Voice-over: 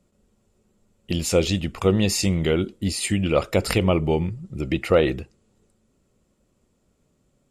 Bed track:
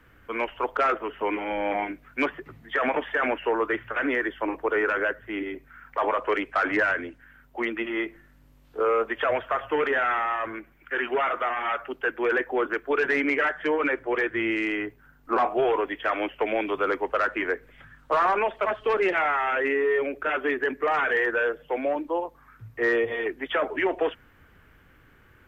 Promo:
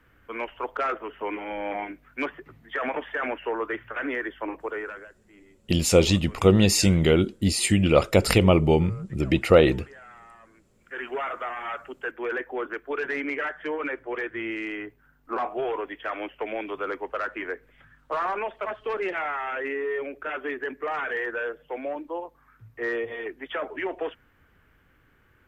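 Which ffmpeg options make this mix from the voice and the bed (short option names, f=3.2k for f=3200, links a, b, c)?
-filter_complex "[0:a]adelay=4600,volume=2dB[a];[1:a]volume=14dB,afade=t=out:st=4.53:d=0.55:silence=0.105925,afade=t=in:st=10.65:d=0.43:silence=0.125893[b];[a][b]amix=inputs=2:normalize=0"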